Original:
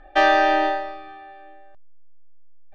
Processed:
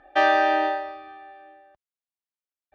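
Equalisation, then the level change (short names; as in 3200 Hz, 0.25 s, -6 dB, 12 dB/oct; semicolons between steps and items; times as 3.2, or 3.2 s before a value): HPF 64 Hz 12 dB/oct; low shelf 270 Hz -5 dB; high shelf 3900 Hz -6.5 dB; -1.5 dB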